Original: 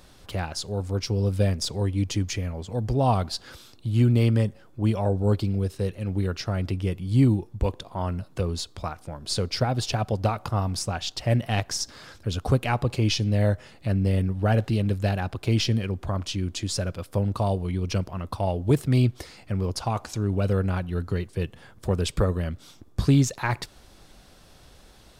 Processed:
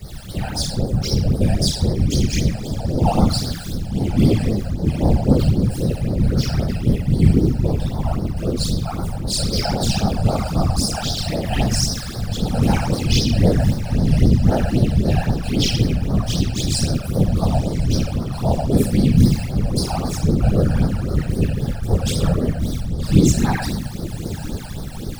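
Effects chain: jump at every zero crossing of -36.5 dBFS; band-stop 980 Hz, Q 7.7; on a send: echo that smears into a reverb 1041 ms, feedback 69%, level -14 dB; on the sum: simulated room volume 330 m³, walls mixed, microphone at 4 m; whisper effect; treble shelf 4.1 kHz +9 dB; phase shifter stages 12, 3.8 Hz, lowest notch 340–2700 Hz; bass shelf 130 Hz -3.5 dB; tape noise reduction on one side only decoder only; trim -6 dB

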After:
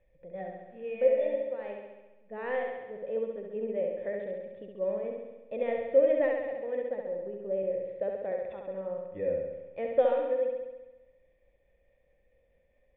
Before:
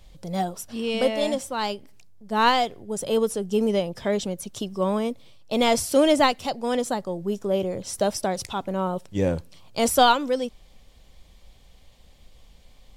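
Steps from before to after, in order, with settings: cascade formant filter e; tremolo 4.7 Hz, depth 34%; flutter echo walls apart 11.6 m, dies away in 1.1 s

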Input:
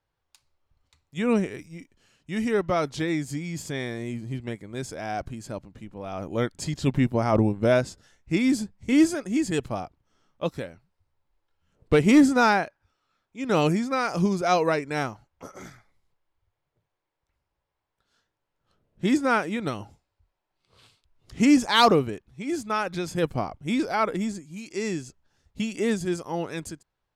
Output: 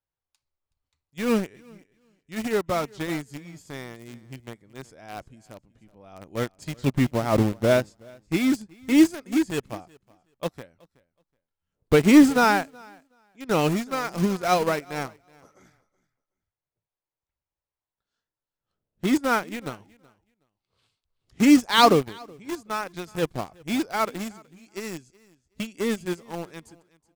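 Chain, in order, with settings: in parallel at -5.5 dB: bit crusher 4-bit; on the sum: feedback delay 373 ms, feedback 19%, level -18 dB; upward expansion 1.5:1, over -36 dBFS

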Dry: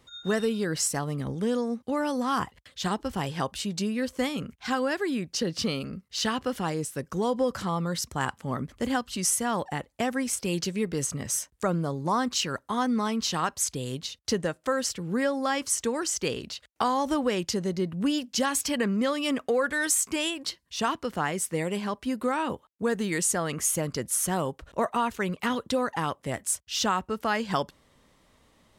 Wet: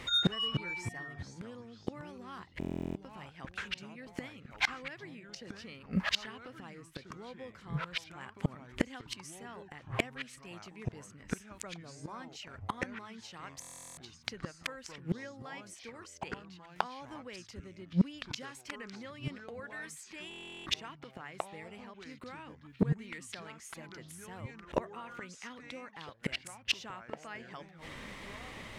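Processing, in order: peaking EQ 2.2 kHz +10 dB 0.9 oct; inverted gate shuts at -25 dBFS, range -35 dB; in parallel at -4 dB: hard clipper -37.5 dBFS, distortion -7 dB; on the sum: treble shelf 9.1 kHz -8.5 dB; ever faster or slower copies 229 ms, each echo -4 st, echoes 3, each echo -6 dB; buffer glitch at 2.59/13.60/20.29 s, samples 1024, times 15; trim +9 dB

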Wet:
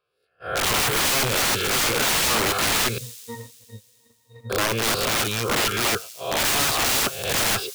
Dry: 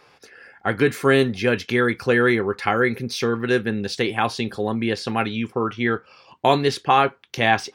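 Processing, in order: reverse spectral sustain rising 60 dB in 0.72 s; static phaser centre 1.3 kHz, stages 8; integer overflow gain 21.5 dB; 2.98–4.50 s: pitch-class resonator A#, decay 0.24 s; gate -39 dBFS, range -29 dB; on a send: feedback echo behind a high-pass 86 ms, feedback 80%, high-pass 5.5 kHz, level -14 dB; on the sum: trim +5 dB

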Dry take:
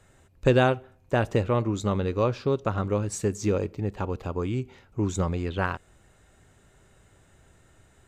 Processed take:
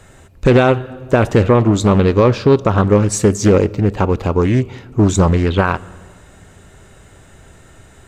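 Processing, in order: on a send at -19.5 dB: reverberation RT60 1.8 s, pre-delay 4 ms; on the sum: loudness maximiser +15.5 dB; loudspeaker Doppler distortion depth 0.38 ms; trim -1 dB

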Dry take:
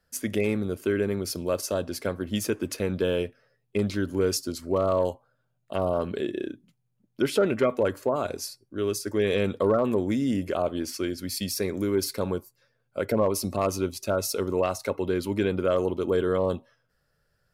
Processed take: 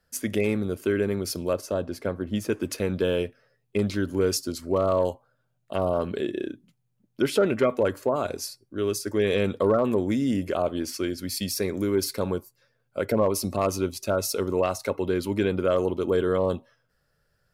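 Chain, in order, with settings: 1.53–2.50 s: treble shelf 2.4 kHz -10 dB; trim +1 dB

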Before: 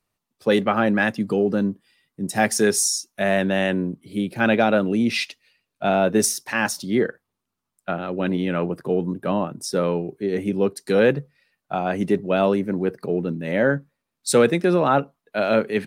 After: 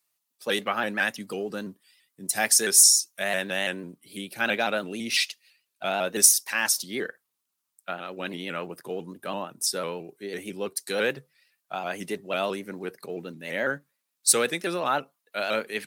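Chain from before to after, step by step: tilt EQ +4 dB/octave; vibrato with a chosen wave saw up 6 Hz, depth 100 cents; trim -6 dB

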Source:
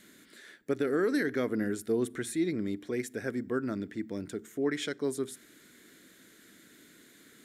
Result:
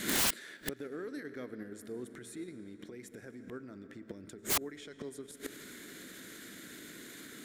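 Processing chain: recorder AGC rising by 76 dB/s; algorithmic reverb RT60 4.1 s, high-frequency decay 0.7×, pre-delay 70 ms, DRR 10.5 dB; inverted gate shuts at -28 dBFS, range -31 dB; in parallel at +2 dB: level held to a coarse grid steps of 10 dB; on the sum: integer overflow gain 34.5 dB; trim +11.5 dB

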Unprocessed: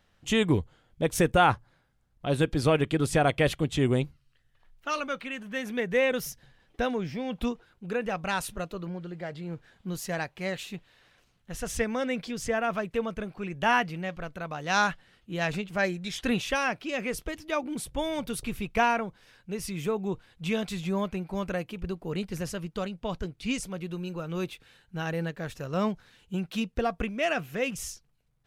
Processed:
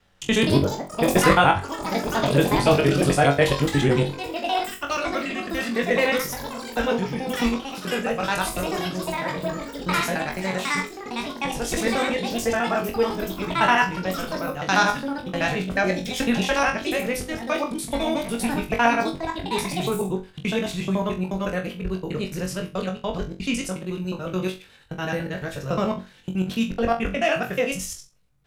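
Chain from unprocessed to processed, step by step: time reversed locally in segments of 72 ms; ever faster or slower copies 265 ms, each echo +6 st, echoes 3, each echo -6 dB; flutter echo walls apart 3.7 m, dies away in 0.27 s; trim +4 dB

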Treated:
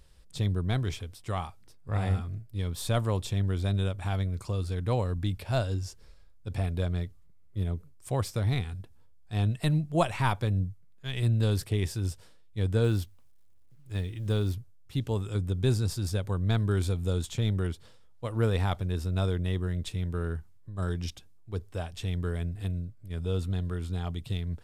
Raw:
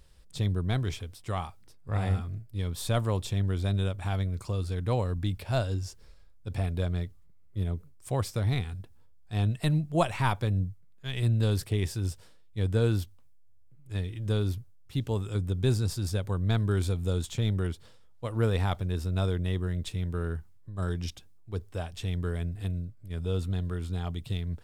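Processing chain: resampled via 32 kHz; 12.84–14.53 s: companded quantiser 8-bit

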